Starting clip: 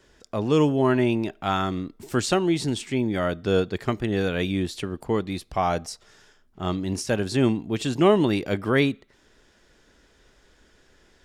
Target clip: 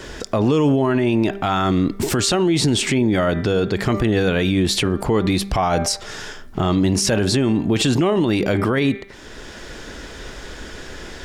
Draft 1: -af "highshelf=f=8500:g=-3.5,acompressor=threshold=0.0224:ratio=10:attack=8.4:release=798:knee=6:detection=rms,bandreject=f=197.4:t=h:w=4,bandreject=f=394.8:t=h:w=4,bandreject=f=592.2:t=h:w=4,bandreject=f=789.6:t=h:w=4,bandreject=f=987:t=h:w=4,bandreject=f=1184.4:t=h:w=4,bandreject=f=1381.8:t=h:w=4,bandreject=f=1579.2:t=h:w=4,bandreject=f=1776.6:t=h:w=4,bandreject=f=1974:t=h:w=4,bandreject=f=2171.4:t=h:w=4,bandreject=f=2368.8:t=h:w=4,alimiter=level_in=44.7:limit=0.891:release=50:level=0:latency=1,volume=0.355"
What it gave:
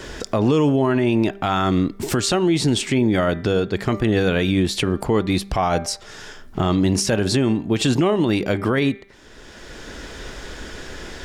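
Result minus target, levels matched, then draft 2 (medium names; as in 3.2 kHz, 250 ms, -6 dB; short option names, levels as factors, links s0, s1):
compression: peak gain reduction +8 dB
-af "highshelf=f=8500:g=-3.5,acompressor=threshold=0.0631:ratio=10:attack=8.4:release=798:knee=6:detection=rms,bandreject=f=197.4:t=h:w=4,bandreject=f=394.8:t=h:w=4,bandreject=f=592.2:t=h:w=4,bandreject=f=789.6:t=h:w=4,bandreject=f=987:t=h:w=4,bandreject=f=1184.4:t=h:w=4,bandreject=f=1381.8:t=h:w=4,bandreject=f=1579.2:t=h:w=4,bandreject=f=1776.6:t=h:w=4,bandreject=f=1974:t=h:w=4,bandreject=f=2171.4:t=h:w=4,bandreject=f=2368.8:t=h:w=4,alimiter=level_in=44.7:limit=0.891:release=50:level=0:latency=1,volume=0.355"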